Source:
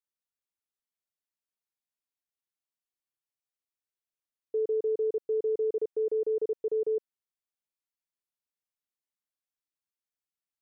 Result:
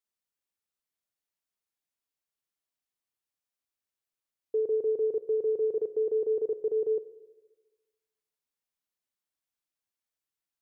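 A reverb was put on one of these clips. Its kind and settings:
four-comb reverb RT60 1.3 s, combs from 27 ms, DRR 12.5 dB
level +1.5 dB

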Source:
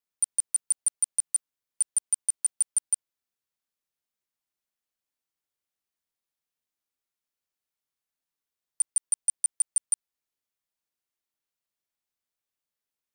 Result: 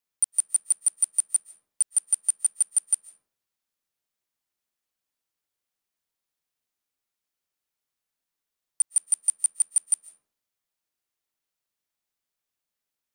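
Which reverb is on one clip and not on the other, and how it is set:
comb and all-pass reverb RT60 0.61 s, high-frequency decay 0.45×, pre-delay 100 ms, DRR 14 dB
level +2.5 dB

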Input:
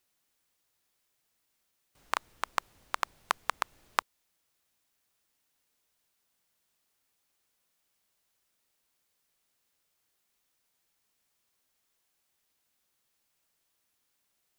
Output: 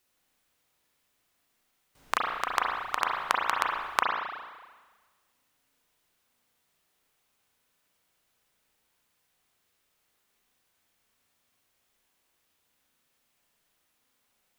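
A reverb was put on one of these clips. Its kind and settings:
spring reverb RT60 1.4 s, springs 33/37 ms, chirp 30 ms, DRR −2.5 dB
level +2 dB

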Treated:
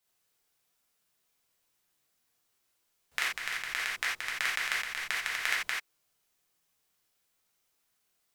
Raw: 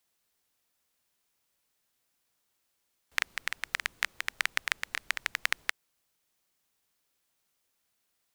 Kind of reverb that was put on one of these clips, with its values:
reverb whose tail is shaped and stops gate 110 ms flat, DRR −5.5 dB
level −5.5 dB

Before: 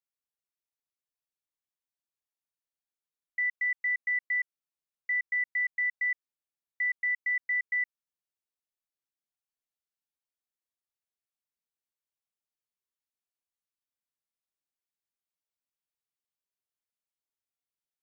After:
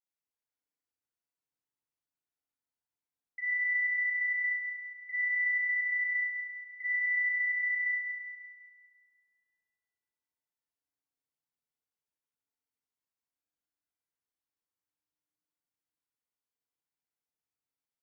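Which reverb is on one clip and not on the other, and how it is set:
feedback delay network reverb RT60 2.9 s, low-frequency decay 1.35×, high-frequency decay 0.25×, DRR −8.5 dB
level −10 dB

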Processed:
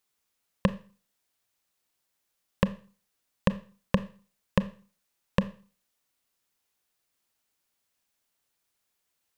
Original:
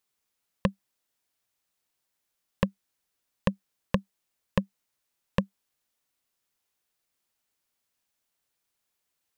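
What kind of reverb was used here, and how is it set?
four-comb reverb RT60 0.39 s, combs from 27 ms, DRR 13.5 dB
level +1.5 dB

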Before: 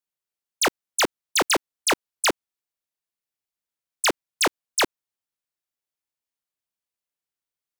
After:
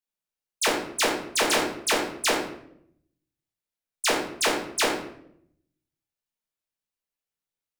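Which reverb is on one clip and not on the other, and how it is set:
rectangular room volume 140 cubic metres, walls mixed, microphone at 1.5 metres
level −6.5 dB

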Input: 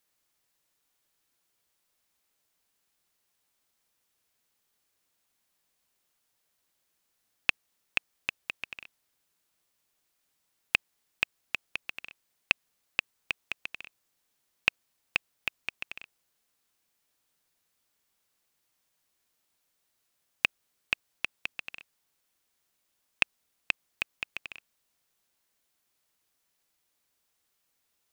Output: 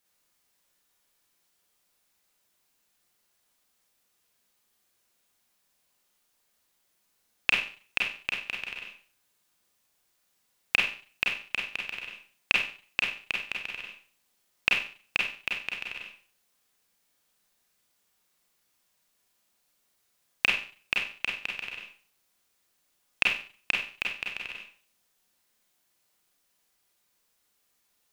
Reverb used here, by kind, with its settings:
four-comb reverb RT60 0.42 s, combs from 31 ms, DRR −2 dB

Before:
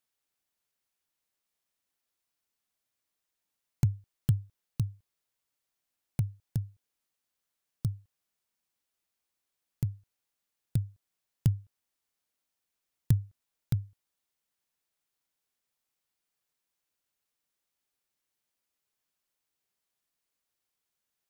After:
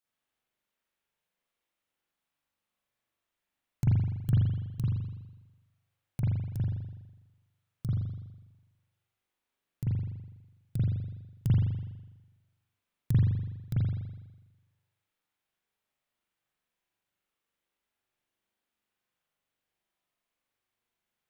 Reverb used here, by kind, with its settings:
spring reverb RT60 1.1 s, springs 41 ms, chirp 50 ms, DRR −9 dB
level −6 dB

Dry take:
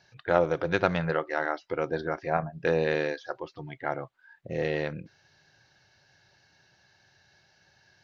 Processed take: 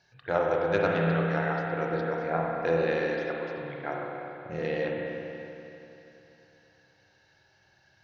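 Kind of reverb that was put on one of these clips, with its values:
spring reverb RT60 3.2 s, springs 30/48 ms, chirp 70 ms, DRR −2 dB
level −4.5 dB

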